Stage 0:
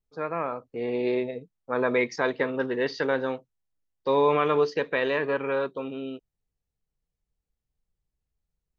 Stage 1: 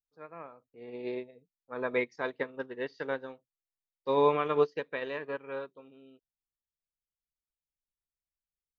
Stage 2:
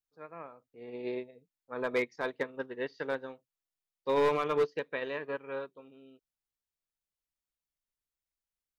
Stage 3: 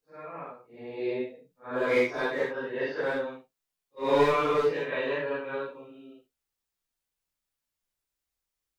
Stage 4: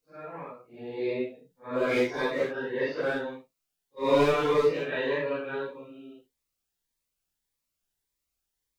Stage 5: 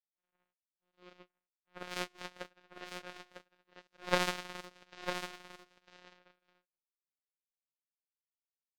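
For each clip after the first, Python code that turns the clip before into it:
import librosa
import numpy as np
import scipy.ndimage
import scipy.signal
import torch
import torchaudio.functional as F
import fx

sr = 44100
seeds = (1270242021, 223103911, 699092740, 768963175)

y1 = fx.upward_expand(x, sr, threshold_db=-32.0, expansion=2.5)
y1 = F.gain(torch.from_numpy(y1), -1.0).numpy()
y2 = np.clip(y1, -10.0 ** (-22.0 / 20.0), 10.0 ** (-22.0 / 20.0))
y3 = fx.phase_scramble(y2, sr, seeds[0], window_ms=200)
y3 = F.gain(torch.from_numpy(y3), 6.0).numpy()
y4 = fx.notch_cascade(y3, sr, direction='rising', hz=1.7)
y4 = F.gain(torch.from_numpy(y4), 3.0).numpy()
y5 = fx.robotise(y4, sr, hz=179.0)
y5 = fx.power_curve(y5, sr, exponent=3.0)
y5 = y5 + 10.0 ** (-7.5 / 20.0) * np.pad(y5, (int(951 * sr / 1000.0), 0))[:len(y5)]
y5 = F.gain(torch.from_numpy(y5), 3.0).numpy()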